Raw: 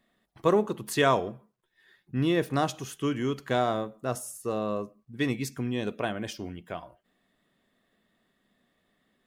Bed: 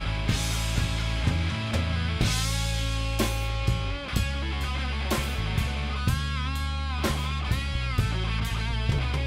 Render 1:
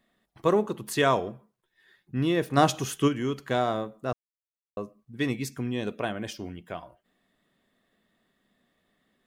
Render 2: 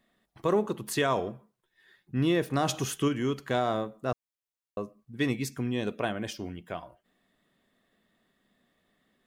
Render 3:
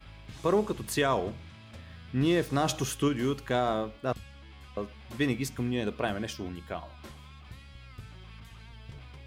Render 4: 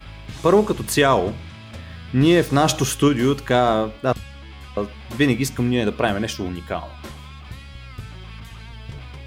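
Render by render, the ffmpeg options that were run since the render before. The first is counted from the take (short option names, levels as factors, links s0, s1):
-filter_complex "[0:a]asplit=3[s0][s1][s2];[s0]afade=t=out:st=2.56:d=0.02[s3];[s1]acontrast=75,afade=t=in:st=2.56:d=0.02,afade=t=out:st=3.07:d=0.02[s4];[s2]afade=t=in:st=3.07:d=0.02[s5];[s3][s4][s5]amix=inputs=3:normalize=0,asplit=3[s6][s7][s8];[s6]atrim=end=4.13,asetpts=PTS-STARTPTS,afade=t=out:st=4.126:d=0.004:c=hsin[s9];[s7]atrim=start=4.13:end=4.77,asetpts=PTS-STARTPTS,volume=0[s10];[s8]atrim=start=4.77,asetpts=PTS-STARTPTS,afade=t=in:d=0.004:c=hsin[s11];[s9][s10][s11]concat=n=3:v=0:a=1"
-af "alimiter=limit=0.15:level=0:latency=1:release=59"
-filter_complex "[1:a]volume=0.0944[s0];[0:a][s0]amix=inputs=2:normalize=0"
-af "volume=3.35"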